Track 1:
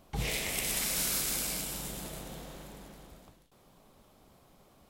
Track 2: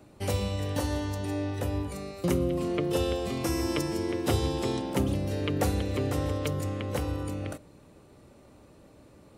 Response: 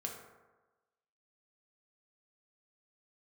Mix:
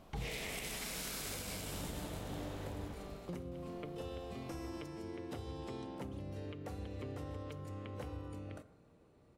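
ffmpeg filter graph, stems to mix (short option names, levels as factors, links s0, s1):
-filter_complex "[0:a]volume=1,asplit=2[s0][s1];[s1]volume=0.398[s2];[1:a]acompressor=threshold=0.0355:ratio=3,adelay=1050,volume=0.2,asplit=2[s3][s4];[s4]volume=0.473[s5];[2:a]atrim=start_sample=2205[s6];[s2][s5]amix=inputs=2:normalize=0[s7];[s7][s6]afir=irnorm=-1:irlink=0[s8];[s0][s3][s8]amix=inputs=3:normalize=0,highshelf=f=5700:g=-9.5,alimiter=level_in=2.51:limit=0.0631:level=0:latency=1:release=291,volume=0.398"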